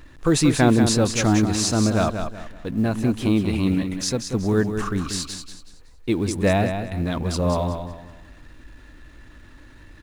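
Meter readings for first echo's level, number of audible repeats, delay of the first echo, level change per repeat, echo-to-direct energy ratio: -7.5 dB, 3, 0.187 s, -10.0 dB, -7.0 dB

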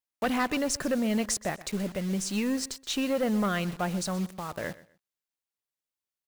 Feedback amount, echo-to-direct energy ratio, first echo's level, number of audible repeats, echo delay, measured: 24%, -19.0 dB, -19.0 dB, 2, 0.125 s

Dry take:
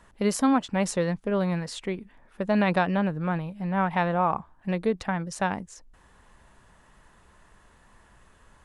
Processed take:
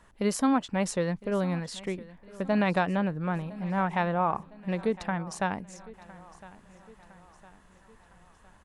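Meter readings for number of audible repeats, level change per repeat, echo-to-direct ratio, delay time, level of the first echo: 3, -6.0 dB, -18.5 dB, 1.009 s, -20.0 dB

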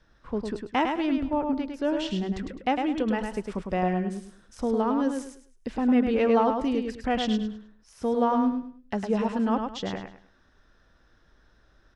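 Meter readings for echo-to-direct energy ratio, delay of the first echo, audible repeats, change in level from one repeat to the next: -4.5 dB, 0.104 s, 3, -11.0 dB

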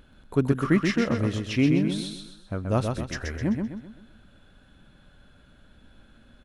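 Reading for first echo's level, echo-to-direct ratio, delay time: -5.0 dB, -4.0 dB, 0.129 s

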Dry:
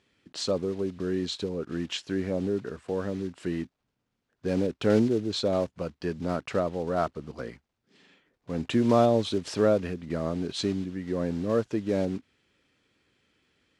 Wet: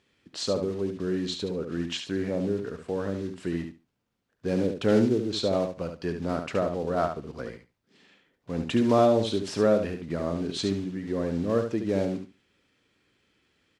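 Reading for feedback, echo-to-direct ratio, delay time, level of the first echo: 17%, -7.0 dB, 71 ms, -7.0 dB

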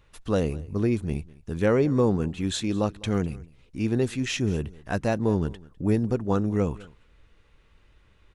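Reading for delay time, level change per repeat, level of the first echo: 0.203 s, no steady repeat, -22.0 dB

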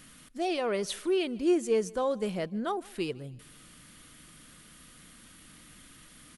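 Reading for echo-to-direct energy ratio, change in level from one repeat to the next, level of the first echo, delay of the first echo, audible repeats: -23.0 dB, -7.5 dB, -24.0 dB, 0.152 s, 2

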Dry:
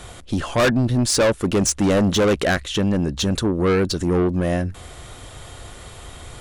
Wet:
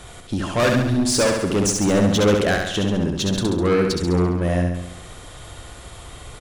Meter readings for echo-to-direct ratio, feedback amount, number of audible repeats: -2.5 dB, 56%, 7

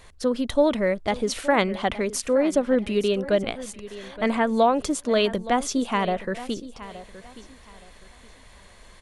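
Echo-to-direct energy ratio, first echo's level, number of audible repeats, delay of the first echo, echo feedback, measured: -15.5 dB, -16.0 dB, 2, 0.87 s, 27%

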